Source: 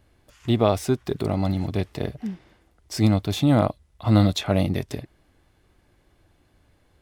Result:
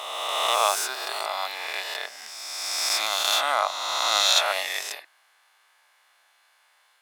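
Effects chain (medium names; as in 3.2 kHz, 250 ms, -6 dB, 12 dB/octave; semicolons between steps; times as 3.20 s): reverse spectral sustain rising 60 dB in 2.17 s; high-pass 890 Hz 24 dB/octave; trim +4.5 dB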